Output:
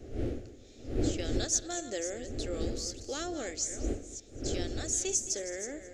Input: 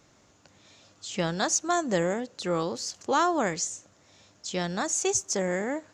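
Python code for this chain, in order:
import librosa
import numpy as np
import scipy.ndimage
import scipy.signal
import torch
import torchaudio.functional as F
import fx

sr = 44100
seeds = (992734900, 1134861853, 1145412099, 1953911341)

p1 = fx.reverse_delay(x, sr, ms=300, wet_db=-11.0)
p2 = fx.dmg_wind(p1, sr, seeds[0], corner_hz=250.0, level_db=-25.0)
p3 = fx.high_shelf(p2, sr, hz=3300.0, db=8.0)
p4 = fx.fixed_phaser(p3, sr, hz=410.0, stages=4)
p5 = p4 + fx.echo_single(p4, sr, ms=218, db=-17.0, dry=0)
y = p5 * 10.0 ** (-9.0 / 20.0)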